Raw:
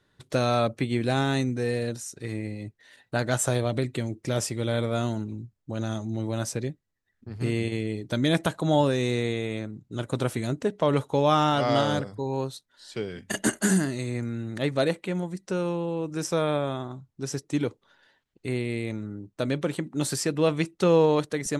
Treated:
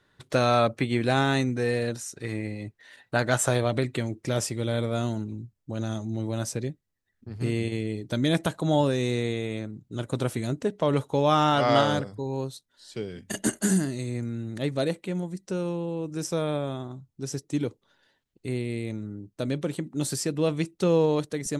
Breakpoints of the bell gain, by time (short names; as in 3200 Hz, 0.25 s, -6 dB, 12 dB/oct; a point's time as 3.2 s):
bell 1400 Hz 2.6 oct
3.97 s +4 dB
4.68 s -2.5 dB
11.15 s -2.5 dB
11.77 s +5 dB
12.24 s -6 dB